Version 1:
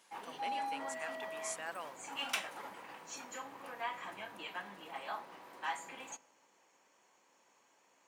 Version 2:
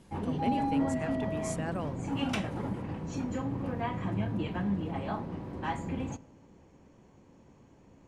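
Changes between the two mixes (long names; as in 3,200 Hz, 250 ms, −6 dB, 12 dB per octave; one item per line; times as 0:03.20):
background: add high-frequency loss of the air 52 metres
master: remove high-pass filter 1,000 Hz 12 dB per octave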